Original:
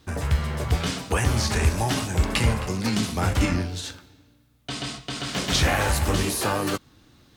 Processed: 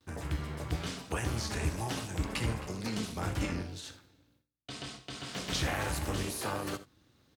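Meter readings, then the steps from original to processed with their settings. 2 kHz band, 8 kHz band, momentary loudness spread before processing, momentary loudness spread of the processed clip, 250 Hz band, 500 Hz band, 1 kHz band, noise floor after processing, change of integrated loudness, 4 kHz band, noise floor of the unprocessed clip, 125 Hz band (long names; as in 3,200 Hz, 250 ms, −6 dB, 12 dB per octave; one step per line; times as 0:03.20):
−11.0 dB, −11.0 dB, 10 LU, 10 LU, −10.0 dB, −10.5 dB, −11.0 dB, −70 dBFS, −11.0 dB, −11.0 dB, −58 dBFS, −11.5 dB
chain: noise gate with hold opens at −49 dBFS
on a send: multi-tap delay 61/81 ms −16.5/−18 dB
on the sum: amplitude modulation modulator 230 Hz, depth 50%
high-pass filter 51 Hz
level −8 dB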